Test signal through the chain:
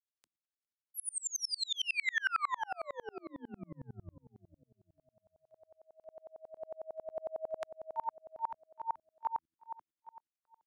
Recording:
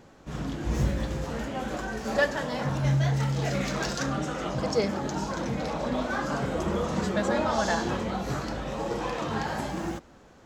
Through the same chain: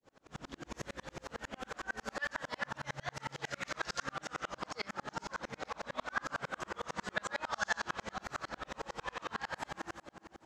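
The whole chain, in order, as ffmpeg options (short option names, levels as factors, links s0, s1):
-filter_complex "[0:a]acrossover=split=280[s0][s1];[s0]acompressor=threshold=0.0178:ratio=6[s2];[s2][s1]amix=inputs=2:normalize=0,lowpass=10000,lowshelf=f=180:g=-9,asplit=2[s3][s4];[s4]aecho=0:1:408|816|1224|1632:0.237|0.0854|0.0307|0.0111[s5];[s3][s5]amix=inputs=2:normalize=0,adynamicequalizer=threshold=0.00891:dfrequency=1400:dqfactor=0.89:tfrequency=1400:tqfactor=0.89:attack=5:release=100:ratio=0.375:range=2.5:mode=boostabove:tftype=bell,bandreject=f=81.26:t=h:w=4,bandreject=f=162.52:t=h:w=4,bandreject=f=243.78:t=h:w=4,bandreject=f=325.04:t=h:w=4,acrossover=split=150|970[s6][s7][s8];[s7]acompressor=threshold=0.0126:ratio=6[s9];[s6][s9][s8]amix=inputs=3:normalize=0,aeval=exprs='val(0)*pow(10,-39*if(lt(mod(-11*n/s,1),2*abs(-11)/1000),1-mod(-11*n/s,1)/(2*abs(-11)/1000),(mod(-11*n/s,1)-2*abs(-11)/1000)/(1-2*abs(-11)/1000))/20)':c=same,volume=1.12"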